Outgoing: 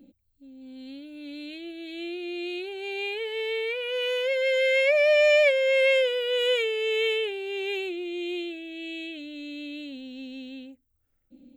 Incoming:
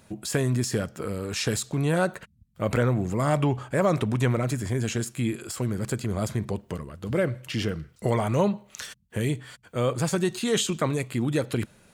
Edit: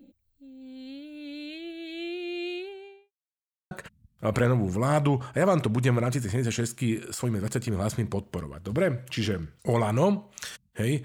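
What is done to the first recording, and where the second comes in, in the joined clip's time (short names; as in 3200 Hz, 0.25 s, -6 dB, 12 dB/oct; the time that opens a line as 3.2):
outgoing
2.42–3.12 studio fade out
3.12–3.71 mute
3.71 switch to incoming from 2.08 s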